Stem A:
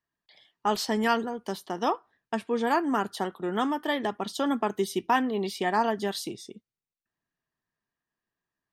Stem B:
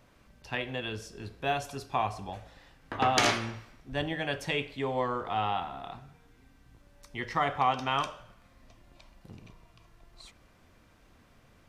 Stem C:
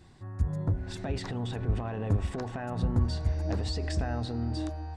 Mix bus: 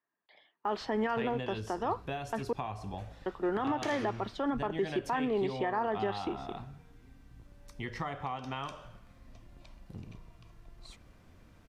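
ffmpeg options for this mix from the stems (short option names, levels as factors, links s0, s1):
-filter_complex "[0:a]highpass=270,acrusher=bits=6:mode=log:mix=0:aa=0.000001,lowpass=2000,volume=1.26,asplit=3[s0][s1][s2];[s0]atrim=end=2.53,asetpts=PTS-STARTPTS,afade=t=out:st=2.526:d=0.004:c=hsin[s3];[s1]atrim=start=2.53:end=3.26,asetpts=PTS-STARTPTS,volume=0[s4];[s2]atrim=start=3.26,asetpts=PTS-STARTPTS,afade=t=in:d=0.004:c=hsin[s5];[s3][s4][s5]concat=n=3:v=0:a=1[s6];[1:a]adelay=650,volume=0.75,lowshelf=f=350:g=7.5,acompressor=threshold=0.02:ratio=6,volume=1[s7];[s6][s7]amix=inputs=2:normalize=0,alimiter=limit=0.075:level=0:latency=1:release=77"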